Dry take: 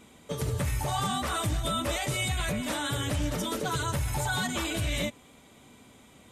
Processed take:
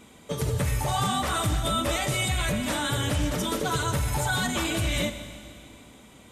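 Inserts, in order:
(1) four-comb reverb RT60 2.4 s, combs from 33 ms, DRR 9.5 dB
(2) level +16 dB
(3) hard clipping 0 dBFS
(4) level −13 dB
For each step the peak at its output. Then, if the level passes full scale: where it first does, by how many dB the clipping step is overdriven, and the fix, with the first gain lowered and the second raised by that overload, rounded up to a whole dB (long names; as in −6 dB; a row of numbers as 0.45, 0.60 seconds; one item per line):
−18.0, −2.0, −2.0, −15.0 dBFS
no step passes full scale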